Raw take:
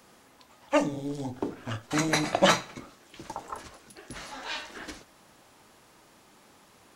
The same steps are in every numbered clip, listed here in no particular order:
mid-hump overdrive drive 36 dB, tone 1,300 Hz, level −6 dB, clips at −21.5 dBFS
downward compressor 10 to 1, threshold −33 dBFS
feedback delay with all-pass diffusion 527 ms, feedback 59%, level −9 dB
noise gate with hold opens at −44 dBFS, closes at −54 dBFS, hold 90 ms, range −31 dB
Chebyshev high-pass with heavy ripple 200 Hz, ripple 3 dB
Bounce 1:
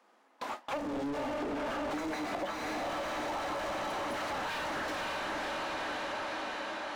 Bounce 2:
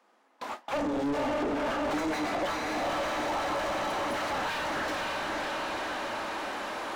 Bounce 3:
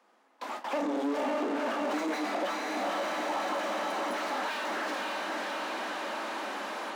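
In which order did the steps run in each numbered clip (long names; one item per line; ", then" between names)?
Chebyshev high-pass with heavy ripple, then noise gate with hold, then feedback delay with all-pass diffusion, then mid-hump overdrive, then downward compressor
feedback delay with all-pass diffusion, then downward compressor, then Chebyshev high-pass with heavy ripple, then noise gate with hold, then mid-hump overdrive
noise gate with hold, then feedback delay with all-pass diffusion, then downward compressor, then mid-hump overdrive, then Chebyshev high-pass with heavy ripple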